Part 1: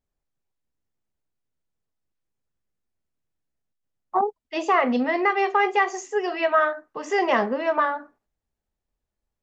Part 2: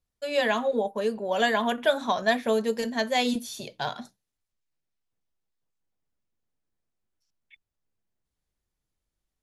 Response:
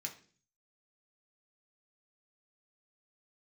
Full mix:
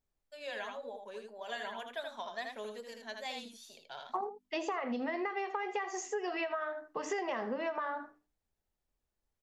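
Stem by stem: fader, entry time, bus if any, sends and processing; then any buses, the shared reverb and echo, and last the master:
-2.5 dB, 0.00 s, no send, echo send -14.5 dB, notches 50/100/150/200/250/300 Hz; compressor, threshold -23 dBFS, peak gain reduction 8.5 dB
-16.0 dB, 0.10 s, no send, echo send -5 dB, weighting filter A; wow and flutter 72 cents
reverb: off
echo: echo 80 ms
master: compressor 5:1, threshold -33 dBFS, peak gain reduction 9 dB

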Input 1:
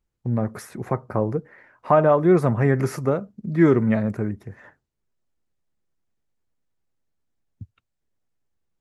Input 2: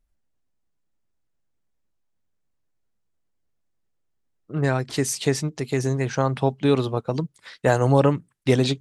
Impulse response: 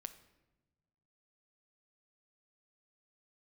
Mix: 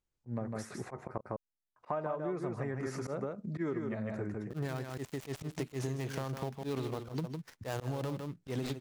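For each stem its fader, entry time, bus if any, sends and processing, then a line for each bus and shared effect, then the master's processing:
-7.0 dB, 0.00 s, muted 1.21–1.76, no send, echo send -5 dB, LPF 9000 Hz 24 dB/oct; tone controls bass -4 dB, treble +3 dB
-3.5 dB, 0.00 s, no send, echo send -9 dB, switching dead time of 0.17 ms; gate -46 dBFS, range -18 dB; limiter -14.5 dBFS, peak gain reduction 9.5 dB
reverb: off
echo: echo 0.155 s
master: auto swell 0.124 s; compressor 12:1, threshold -32 dBFS, peak gain reduction 14.5 dB

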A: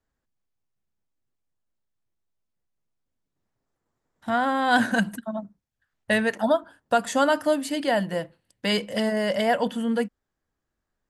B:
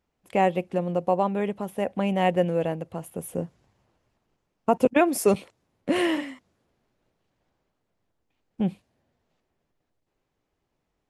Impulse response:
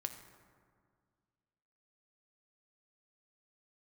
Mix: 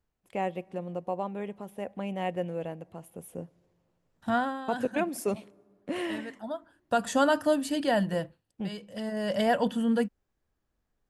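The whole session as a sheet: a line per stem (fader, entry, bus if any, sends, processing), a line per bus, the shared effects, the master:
-3.5 dB, 0.00 s, no send, low shelf 180 Hz +8 dB; notch 2100 Hz, Q 10; auto duck -15 dB, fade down 0.30 s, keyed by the second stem
-10.5 dB, 0.00 s, send -15.5 dB, dry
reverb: on, RT60 2.0 s, pre-delay 4 ms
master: dry

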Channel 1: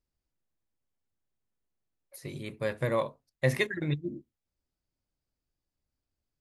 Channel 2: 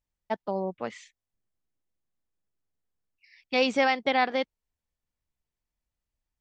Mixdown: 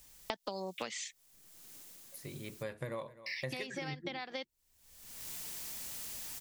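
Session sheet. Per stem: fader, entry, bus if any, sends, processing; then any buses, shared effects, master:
-6.0 dB, 0.00 s, no send, echo send -22 dB, dry
-9.0 dB, 0.00 s, muted 2.63–3.26, no send, no echo send, AGC gain up to 16.5 dB; high shelf 2600 Hz +10.5 dB; three-band squash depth 100%; auto duck -12 dB, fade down 1.30 s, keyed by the first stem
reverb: off
echo: echo 0.255 s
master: high shelf 5600 Hz +5 dB; compressor 10:1, threshold -36 dBFS, peak gain reduction 17 dB

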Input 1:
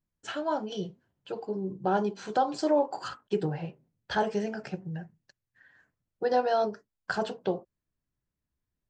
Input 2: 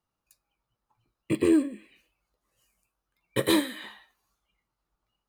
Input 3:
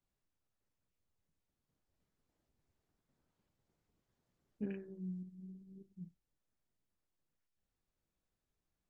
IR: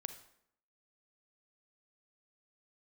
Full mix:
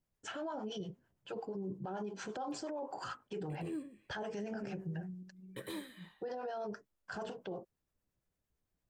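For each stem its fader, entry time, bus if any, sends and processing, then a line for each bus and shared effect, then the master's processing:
+2.0 dB, 0.00 s, no send, bell 4100 Hz -7 dB 0.38 oct; harmonic tremolo 8.8 Hz, depth 70%, crossover 660 Hz
-17.0 dB, 2.20 s, no send, dry
-4.5 dB, 0.00 s, no send, bell 550 Hz +6 dB 1.6 oct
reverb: off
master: limiter -33.5 dBFS, peak gain reduction 19 dB

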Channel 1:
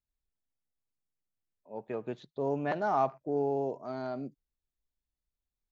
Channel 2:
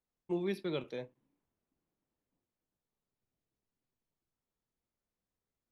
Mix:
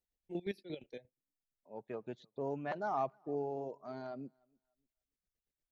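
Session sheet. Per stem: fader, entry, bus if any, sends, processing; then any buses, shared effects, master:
-6.0 dB, 0.00 s, no send, echo send -22.5 dB, dry
-1.5 dB, 0.00 s, no send, no echo send, Chebyshev band-stop 740–1700 Hz, order 2; chopper 8.6 Hz, depth 65%, duty 40%; auto duck -7 dB, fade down 1.10 s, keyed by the first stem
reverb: off
echo: feedback echo 0.295 s, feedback 16%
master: reverb removal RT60 0.67 s

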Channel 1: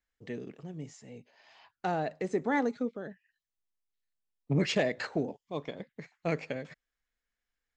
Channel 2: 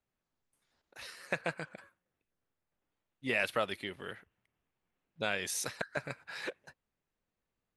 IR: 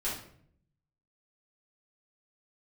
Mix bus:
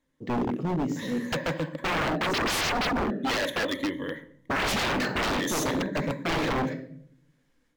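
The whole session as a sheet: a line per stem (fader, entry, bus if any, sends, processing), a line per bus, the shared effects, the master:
+2.0 dB, 0.00 s, send -13 dB, AGC gain up to 9.5 dB; auto duck -7 dB, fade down 0.45 s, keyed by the second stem
+2.5 dB, 0.00 s, send -13 dB, ripple EQ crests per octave 1.1, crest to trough 16 dB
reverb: on, RT60 0.60 s, pre-delay 4 ms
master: bell 270 Hz +12 dB 1.5 oct; wavefolder -21.5 dBFS; decimation joined by straight lines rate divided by 2×

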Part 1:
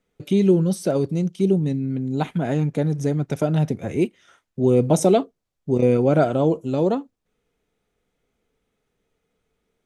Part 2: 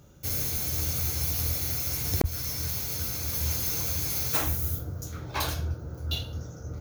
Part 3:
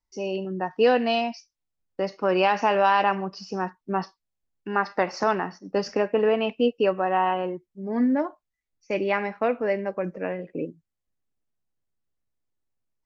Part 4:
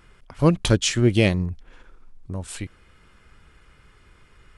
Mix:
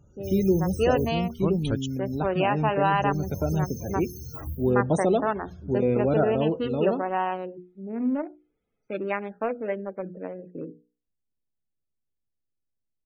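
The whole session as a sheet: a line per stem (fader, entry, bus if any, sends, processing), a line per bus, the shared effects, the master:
-1.5 dB, 0.00 s, no send, flange 0.61 Hz, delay 6.7 ms, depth 6 ms, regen -89%
0.99 s -7.5 dB -> 1.33 s -20 dB -> 2.94 s -20 dB -> 3.23 s -9 dB -> 4.5 s -9 dB -> 4.8 s -19 dB, 0.00 s, no send, low shelf 190 Hz +7.5 dB
-2.5 dB, 0.00 s, no send, Wiener smoothing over 41 samples; notches 60/120/180/240/300/360/420/480 Hz
-10.5 dB, 1.00 s, muted 1.86–2.88, no send, dry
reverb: off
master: loudest bins only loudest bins 64

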